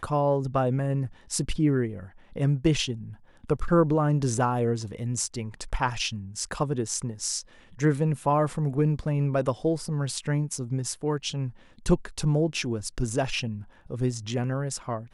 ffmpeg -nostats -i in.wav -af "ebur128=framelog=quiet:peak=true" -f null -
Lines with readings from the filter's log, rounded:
Integrated loudness:
  I:         -27.3 LUFS
  Threshold: -37.6 LUFS
Loudness range:
  LRA:         2.8 LU
  Threshold: -47.5 LUFS
  LRA low:   -28.9 LUFS
  LRA high:  -26.1 LUFS
True peak:
  Peak:       -9.1 dBFS